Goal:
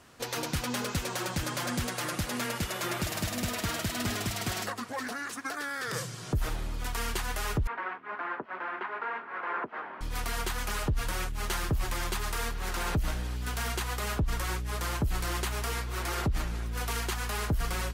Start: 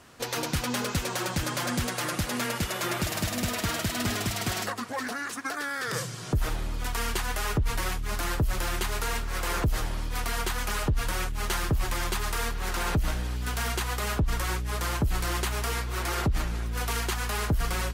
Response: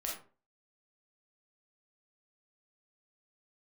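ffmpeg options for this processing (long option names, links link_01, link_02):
-filter_complex "[0:a]asettb=1/sr,asplit=3[link_01][link_02][link_03];[link_01]atrim=end=7.674[link_04];[link_02]atrim=start=7.67:end=10.01,asetpts=PTS-STARTPTS,afade=type=in:duration=0.004:curve=qsin,afade=type=out:start_time=2.336:duration=0.004:curve=qsin,highpass=frequency=280:width=0.5412,highpass=frequency=280:width=1.3066,equalizer=frequency=310:width_type=q:width=4:gain=-6,equalizer=frequency=510:width_type=q:width=4:gain=-4,equalizer=frequency=1000:width_type=q:width=4:gain=5,equalizer=frequency=1500:width_type=q:width=4:gain=4,lowpass=frequency=2100:width=0.5412,lowpass=frequency=2100:width=1.3066[link_05];[link_03]atrim=start=10.006[link_06];[link_04][link_05]acrossfade=duration=0.004:curve1=hsin:curve2=qsin[link_07];[link_07][link_06]acrossfade=duration=0.004:curve1=qsin:curve2=hsin,volume=-3dB"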